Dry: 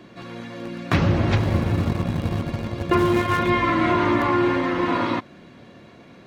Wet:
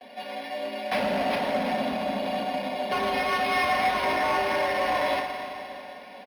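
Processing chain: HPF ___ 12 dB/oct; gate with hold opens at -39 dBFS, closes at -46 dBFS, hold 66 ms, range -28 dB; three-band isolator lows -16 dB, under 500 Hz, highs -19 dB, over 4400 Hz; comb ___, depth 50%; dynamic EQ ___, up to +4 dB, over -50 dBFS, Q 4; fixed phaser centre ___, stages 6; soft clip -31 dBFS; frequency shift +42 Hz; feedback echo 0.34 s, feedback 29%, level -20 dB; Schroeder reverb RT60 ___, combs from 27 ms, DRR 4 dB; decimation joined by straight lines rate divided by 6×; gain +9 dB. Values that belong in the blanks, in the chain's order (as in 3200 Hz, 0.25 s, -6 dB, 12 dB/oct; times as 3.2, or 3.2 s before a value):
160 Hz, 5.7 ms, 250 Hz, 330 Hz, 3 s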